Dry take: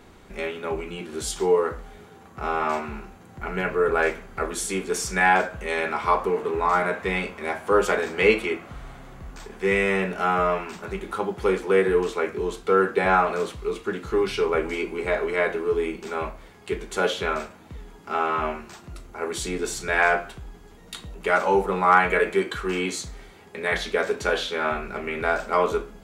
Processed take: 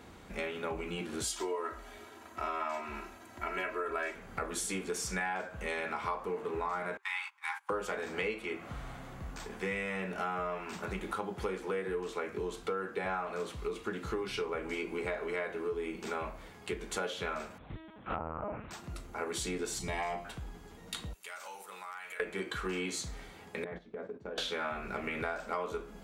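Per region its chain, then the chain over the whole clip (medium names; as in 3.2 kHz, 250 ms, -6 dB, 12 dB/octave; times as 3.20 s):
1.24–4.15 s: bass shelf 290 Hz -11 dB + comb 3.1 ms, depth 93%
6.97–7.70 s: gate -34 dBFS, range -22 dB + brick-wall FIR high-pass 790 Hz
17.58–18.71 s: low-pass that closes with the level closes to 890 Hz, closed at -21 dBFS + LPC vocoder at 8 kHz pitch kept
19.79–20.25 s: peaking EQ 1.5 kHz -14 dB 0.84 oct + band-stop 1.5 kHz, Q 14 + comb 1 ms, depth 58%
21.13–22.20 s: differentiator + compression 5:1, threshold -39 dBFS
23.64–24.38 s: band-pass filter 210 Hz, Q 0.78 + gate -37 dBFS, range -13 dB + compression 4:1, threshold -36 dBFS
whole clip: high-pass 42 Hz; band-stop 390 Hz, Q 12; compression 6:1, threshold -31 dBFS; trim -2 dB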